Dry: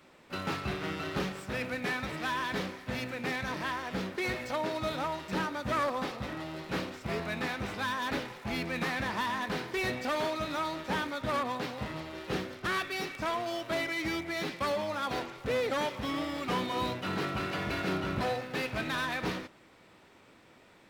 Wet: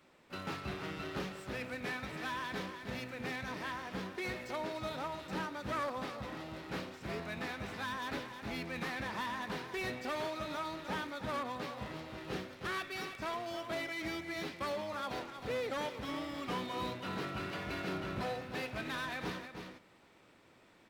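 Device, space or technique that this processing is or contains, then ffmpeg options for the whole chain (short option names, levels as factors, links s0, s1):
ducked delay: -filter_complex "[0:a]asplit=3[s0][s1][s2];[s1]adelay=313,volume=0.668[s3];[s2]apad=whole_len=935486[s4];[s3][s4]sidechaincompress=threshold=0.0126:ratio=8:attack=48:release=705[s5];[s0][s5]amix=inputs=2:normalize=0,volume=0.473"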